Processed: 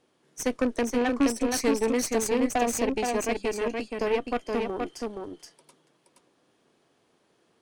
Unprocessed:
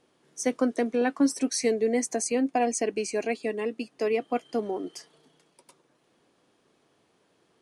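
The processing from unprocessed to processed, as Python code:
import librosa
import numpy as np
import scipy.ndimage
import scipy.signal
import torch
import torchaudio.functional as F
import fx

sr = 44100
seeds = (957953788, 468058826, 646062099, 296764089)

y = fx.rattle_buzz(x, sr, strikes_db=-33.0, level_db=-26.0)
y = fx.cheby_harmonics(y, sr, harmonics=(6,), levels_db=(-17,), full_scale_db=-12.5)
y = y + 10.0 ** (-4.0 / 20.0) * np.pad(y, (int(473 * sr / 1000.0), 0))[:len(y)]
y = F.gain(torch.from_numpy(y), -1.5).numpy()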